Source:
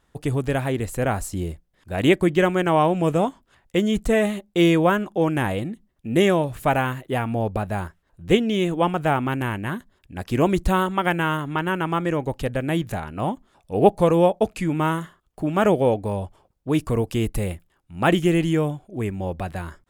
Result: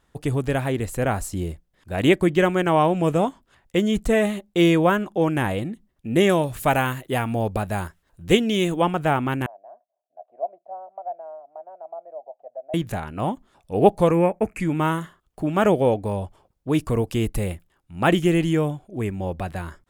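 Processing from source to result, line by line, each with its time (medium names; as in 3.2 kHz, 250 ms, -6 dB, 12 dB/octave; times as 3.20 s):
6.29–8.82 s: treble shelf 3.6 kHz +7.5 dB
9.46–12.74 s: Butterworth band-pass 670 Hz, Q 5.4
14.11–14.60 s: FFT filter 320 Hz 0 dB, 690 Hz -5 dB, 2.3 kHz +8 dB, 3.5 kHz -22 dB, 7.3 kHz -3 dB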